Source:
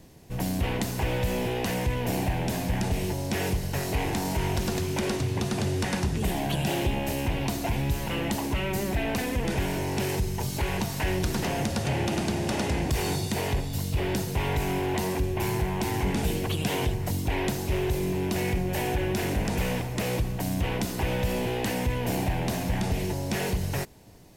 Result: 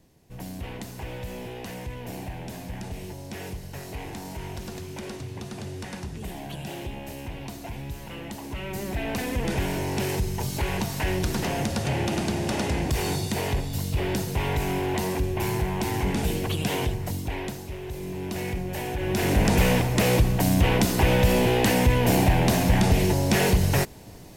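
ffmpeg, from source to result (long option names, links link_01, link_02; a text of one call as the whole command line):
ffmpeg -i in.wav -af "volume=18.5dB,afade=type=in:start_time=8.39:duration=1.07:silence=0.334965,afade=type=out:start_time=16.75:duration=1.03:silence=0.281838,afade=type=in:start_time=17.78:duration=0.62:silence=0.446684,afade=type=in:start_time=18.97:duration=0.49:silence=0.298538" out.wav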